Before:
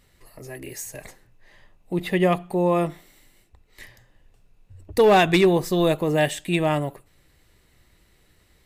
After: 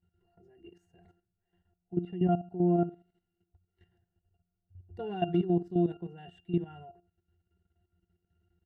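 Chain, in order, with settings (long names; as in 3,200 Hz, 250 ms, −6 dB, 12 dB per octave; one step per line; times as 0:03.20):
resonances in every octave F, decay 0.19 s
output level in coarse steps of 12 dB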